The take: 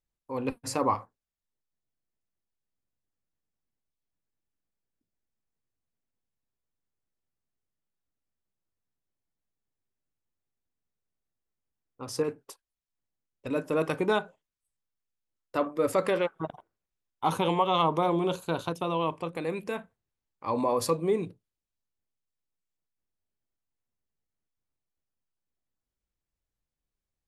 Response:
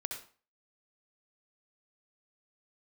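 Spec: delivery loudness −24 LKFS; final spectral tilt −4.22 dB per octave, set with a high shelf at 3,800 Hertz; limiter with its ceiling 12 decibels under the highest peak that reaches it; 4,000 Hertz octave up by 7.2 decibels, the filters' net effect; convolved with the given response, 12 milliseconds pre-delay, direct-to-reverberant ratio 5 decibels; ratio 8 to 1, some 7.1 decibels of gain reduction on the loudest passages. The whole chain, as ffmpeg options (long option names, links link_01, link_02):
-filter_complex "[0:a]highshelf=frequency=3800:gain=8.5,equalizer=frequency=4000:width_type=o:gain=4,acompressor=threshold=-27dB:ratio=8,alimiter=level_in=3dB:limit=-24dB:level=0:latency=1,volume=-3dB,asplit=2[link_01][link_02];[1:a]atrim=start_sample=2205,adelay=12[link_03];[link_02][link_03]afir=irnorm=-1:irlink=0,volume=-5.5dB[link_04];[link_01][link_04]amix=inputs=2:normalize=0,volume=13dB"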